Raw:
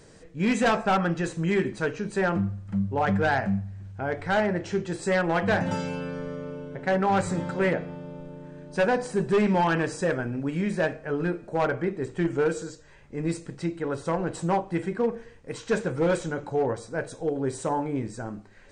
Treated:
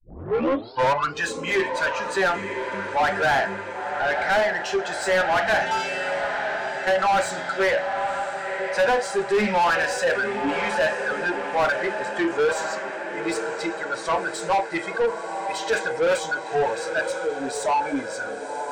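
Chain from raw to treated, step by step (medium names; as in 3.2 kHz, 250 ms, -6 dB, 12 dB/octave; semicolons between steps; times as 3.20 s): tape start-up on the opening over 1.25 s; spectral noise reduction 18 dB; on a send: echo that smears into a reverb 1009 ms, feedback 59%, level -12.5 dB; on the sum: overdrive pedal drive 23 dB, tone 2.7 kHz, clips at -13 dBFS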